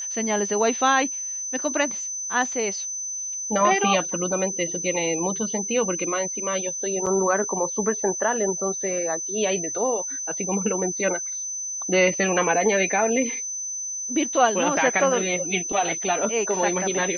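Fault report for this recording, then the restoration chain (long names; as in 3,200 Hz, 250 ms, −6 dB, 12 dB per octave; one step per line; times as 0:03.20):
whistle 6,100 Hz −28 dBFS
0:07.06–0:07.07: drop-out 6.4 ms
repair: notch filter 6,100 Hz, Q 30
repair the gap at 0:07.06, 6.4 ms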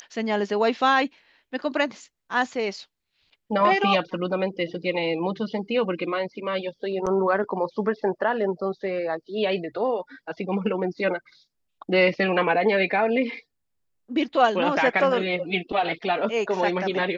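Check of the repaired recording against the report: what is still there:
none of them is left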